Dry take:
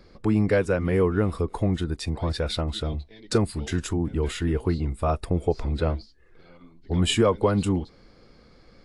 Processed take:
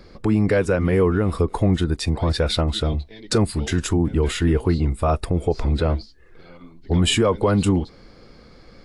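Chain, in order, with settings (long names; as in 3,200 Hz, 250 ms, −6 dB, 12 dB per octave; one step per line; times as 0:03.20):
brickwall limiter −16 dBFS, peak gain reduction 5.5 dB
level +6.5 dB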